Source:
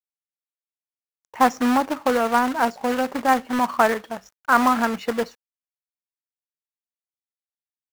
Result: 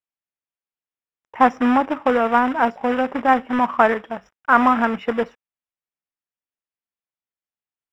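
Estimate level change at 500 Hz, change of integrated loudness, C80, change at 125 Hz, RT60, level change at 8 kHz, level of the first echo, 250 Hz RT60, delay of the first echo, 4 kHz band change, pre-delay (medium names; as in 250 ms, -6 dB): +2.5 dB, +2.5 dB, no reverb, no reading, no reverb, under -15 dB, no echo, no reverb, no echo, -3.5 dB, no reverb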